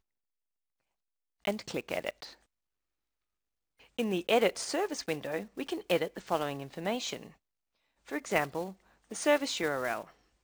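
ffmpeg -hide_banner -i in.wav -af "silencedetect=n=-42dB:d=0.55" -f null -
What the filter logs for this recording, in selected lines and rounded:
silence_start: 0.00
silence_end: 1.45 | silence_duration: 1.45
silence_start: 2.33
silence_end: 3.98 | silence_duration: 1.65
silence_start: 7.28
silence_end: 8.08 | silence_duration: 0.80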